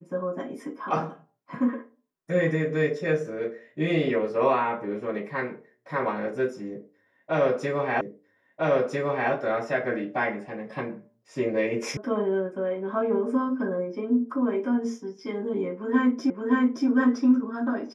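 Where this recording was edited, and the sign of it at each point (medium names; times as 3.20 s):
8.01 s: repeat of the last 1.3 s
11.97 s: sound stops dead
16.30 s: repeat of the last 0.57 s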